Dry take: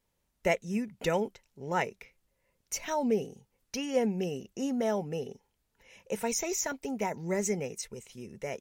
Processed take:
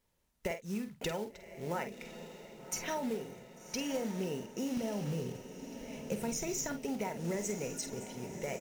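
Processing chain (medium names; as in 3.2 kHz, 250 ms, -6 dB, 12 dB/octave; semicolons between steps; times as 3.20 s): 4.77–6.83 s: tone controls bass +13 dB, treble +2 dB; compression 16:1, threshold -33 dBFS, peak gain reduction 13 dB; short-mantissa float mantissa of 2-bit; doubling 48 ms -9 dB; echo that smears into a reverb 1142 ms, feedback 57%, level -10 dB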